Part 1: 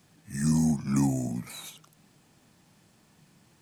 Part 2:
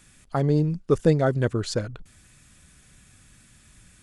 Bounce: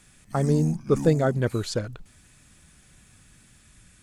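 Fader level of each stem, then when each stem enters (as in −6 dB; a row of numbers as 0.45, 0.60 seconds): −7.0, −1.0 decibels; 0.00, 0.00 seconds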